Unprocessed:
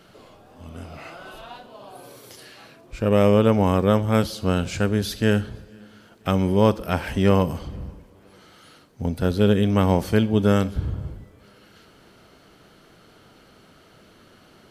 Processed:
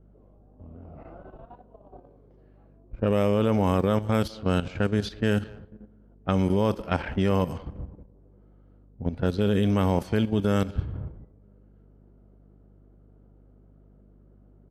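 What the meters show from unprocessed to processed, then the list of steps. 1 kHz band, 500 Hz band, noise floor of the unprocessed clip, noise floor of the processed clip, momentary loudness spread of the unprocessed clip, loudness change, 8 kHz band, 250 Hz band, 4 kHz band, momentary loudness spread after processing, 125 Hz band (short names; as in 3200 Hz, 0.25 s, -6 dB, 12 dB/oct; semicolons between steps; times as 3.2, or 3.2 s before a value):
-4.5 dB, -5.0 dB, -53 dBFS, -55 dBFS, 20 LU, -4.5 dB, n/a, -4.5 dB, -5.5 dB, 15 LU, -4.0 dB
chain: hum 50 Hz, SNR 25 dB; low-pass opened by the level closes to 440 Hz, open at -15.5 dBFS; level quantiser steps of 11 dB; speakerphone echo 0.2 s, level -21 dB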